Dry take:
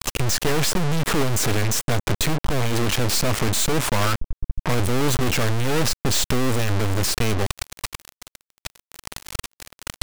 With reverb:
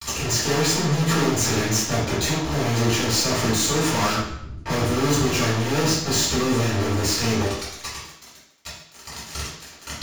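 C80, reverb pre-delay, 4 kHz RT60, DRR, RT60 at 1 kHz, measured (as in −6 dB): 5.5 dB, 3 ms, 0.70 s, −12.0 dB, 0.75 s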